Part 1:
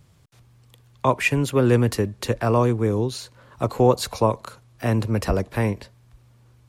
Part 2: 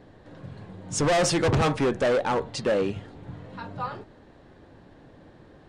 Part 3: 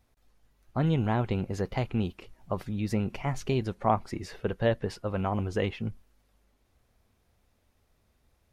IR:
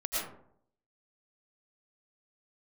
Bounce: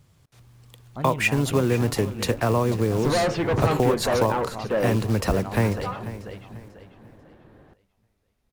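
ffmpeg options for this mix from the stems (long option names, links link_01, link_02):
-filter_complex "[0:a]acompressor=threshold=-21dB:ratio=5,acrusher=bits=5:mode=log:mix=0:aa=0.000001,volume=-2.5dB,asplit=2[link_01][link_02];[link_02]volume=-15.5dB[link_03];[1:a]lowpass=2800,adelay=2050,volume=-6dB[link_04];[2:a]adelay=200,volume=-11.5dB,asplit=2[link_05][link_06];[link_06]volume=-5dB[link_07];[link_03][link_07]amix=inputs=2:normalize=0,aecho=0:1:492|984|1476|1968|2460:1|0.33|0.109|0.0359|0.0119[link_08];[link_01][link_04][link_05][link_08]amix=inputs=4:normalize=0,dynaudnorm=framelen=150:gausssize=5:maxgain=5.5dB"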